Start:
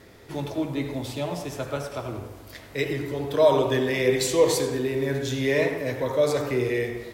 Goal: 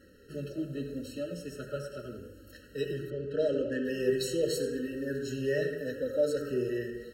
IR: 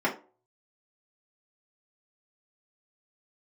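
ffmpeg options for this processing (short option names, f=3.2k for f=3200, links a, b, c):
-filter_complex "[0:a]flanger=delay=3.6:depth=1.8:regen=-24:speed=0.81:shape=triangular,asettb=1/sr,asplit=3[a][b][c];[a]atrim=end=3.104[d];[b]atrim=start=3.1:end=3.85,asetpts=PTS-STARTPTS,afade=t=in:d=0.004:c=qsin,afade=t=out:st=0.746:d=0.004:c=qsin,adynamicsmooth=sensitivity=4:basefreq=3.3k[e];[c]atrim=start=3.846[f];[d][e]acrossfade=d=0.004:c1=hsin:c2=qsin[g];[g][f]acrossfade=d=0.004:c1=qsin:c2=hsin,afftfilt=real='re*eq(mod(floor(b*sr/1024/640),2),0)':imag='im*eq(mod(floor(b*sr/1024/640),2),0)':win_size=1024:overlap=0.75,volume=-3dB"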